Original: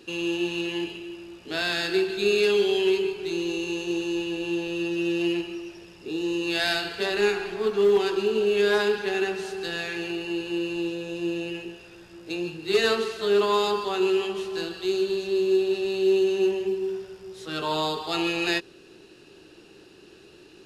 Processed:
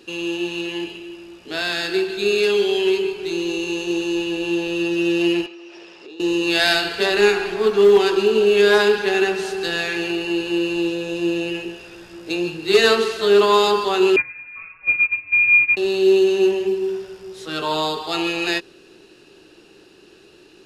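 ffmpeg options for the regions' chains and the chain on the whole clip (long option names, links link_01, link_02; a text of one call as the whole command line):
ffmpeg -i in.wav -filter_complex "[0:a]asettb=1/sr,asplit=3[link_01][link_02][link_03];[link_01]atrim=end=5.464[link_04];[link_02]atrim=start=5.46:end=6.2,asetpts=PTS-STARTPTS,afade=type=in:duration=0.004:curve=qsin,afade=type=out:start_time=0.736:duration=0.004:curve=qsin,acrossover=split=300 6400:gain=0.1 1 0.0794[link_05][link_06][link_07];[link_05][link_06][link_07]amix=inputs=3:normalize=0,acompressor=threshold=-43dB:ratio=10:attack=3.2:release=140:knee=1:detection=peak[link_08];[link_03]atrim=start=6.196[link_09];[link_04][link_08]acrossfade=duration=0.004:curve1=hsin:curve2=qsin[link_10];[link_10][link_09]acrossfade=duration=0.004:curve1=qsin:curve2=hsin,asettb=1/sr,asplit=3[link_11][link_12][link_13];[link_11]atrim=end=14.164[link_14];[link_12]atrim=start=14.16:end=15.77,asetpts=PTS-STARTPTS,afade=type=in:duration=0.004:curve=qsin,afade=type=out:start_time=1.606:duration=0.004:curve=qsin,agate=range=-14dB:threshold=-26dB:ratio=16:release=100:detection=peak,lowpass=frequency=2400:width_type=q:width=0.5098,lowpass=frequency=2400:width_type=q:width=0.6013,lowpass=frequency=2400:width_type=q:width=0.9,lowpass=frequency=2400:width_type=q:width=2.563,afreqshift=-2800[link_15];[link_13]atrim=start=15.766[link_16];[link_14][link_15]acrossfade=duration=0.004:curve1=hsin:curve2=qsin[link_17];[link_17][link_16]acrossfade=duration=0.004:curve1=qsin:curve2=hsin,equalizer=frequency=100:width_type=o:width=2.1:gain=-4,dynaudnorm=framelen=450:gausssize=17:maxgain=5dB,volume=3dB" out.wav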